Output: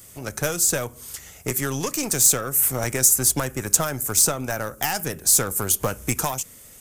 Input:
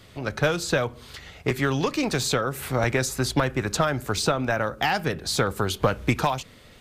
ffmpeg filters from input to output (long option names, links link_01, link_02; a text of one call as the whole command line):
ffmpeg -i in.wav -af "aeval=exprs='0.398*(cos(1*acos(clip(val(0)/0.398,-1,1)))-cos(1*PI/2))+0.0178*(cos(8*acos(clip(val(0)/0.398,-1,1)))-cos(8*PI/2))':channel_layout=same,aexciter=amount=8.4:drive=7.6:freq=6000,volume=-3.5dB" out.wav